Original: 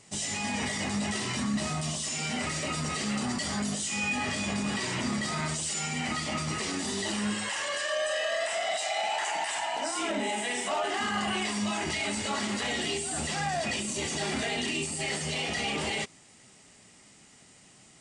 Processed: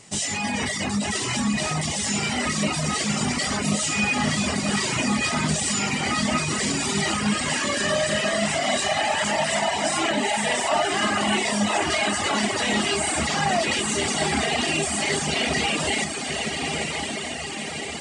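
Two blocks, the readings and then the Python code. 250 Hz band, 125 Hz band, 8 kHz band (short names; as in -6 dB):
+7.5 dB, +7.5 dB, +7.5 dB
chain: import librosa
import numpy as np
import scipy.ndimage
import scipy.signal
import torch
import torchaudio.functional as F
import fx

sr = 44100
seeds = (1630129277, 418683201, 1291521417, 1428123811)

y = fx.echo_diffused(x, sr, ms=1090, feedback_pct=66, wet_db=-3.0)
y = fx.dereverb_blind(y, sr, rt60_s=1.1)
y = y * 10.0 ** (7.5 / 20.0)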